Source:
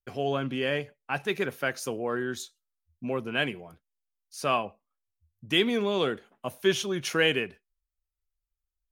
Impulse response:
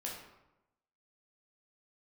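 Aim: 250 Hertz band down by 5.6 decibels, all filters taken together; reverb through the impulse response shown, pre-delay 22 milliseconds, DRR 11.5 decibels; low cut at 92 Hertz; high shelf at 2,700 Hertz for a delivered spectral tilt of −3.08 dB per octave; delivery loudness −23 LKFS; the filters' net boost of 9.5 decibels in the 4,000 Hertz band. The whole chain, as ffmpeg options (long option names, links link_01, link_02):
-filter_complex "[0:a]highpass=92,equalizer=frequency=250:width_type=o:gain=-8,highshelf=frequency=2700:gain=9,equalizer=frequency=4000:width_type=o:gain=6,asplit=2[link_01][link_02];[1:a]atrim=start_sample=2205,adelay=22[link_03];[link_02][link_03]afir=irnorm=-1:irlink=0,volume=-12dB[link_04];[link_01][link_04]amix=inputs=2:normalize=0,volume=1dB"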